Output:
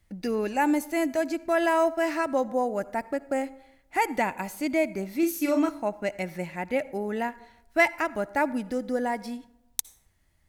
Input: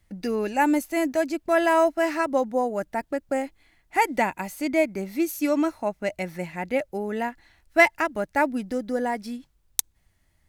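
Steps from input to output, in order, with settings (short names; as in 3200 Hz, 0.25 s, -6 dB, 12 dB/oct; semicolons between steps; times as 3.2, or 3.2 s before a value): in parallel at -2 dB: limiter -16 dBFS, peak gain reduction 11.5 dB; 5.19–5.69 on the sum: doubler 39 ms -5 dB; reverb RT60 0.80 s, pre-delay 52 ms, DRR 18.5 dB; gain -6.5 dB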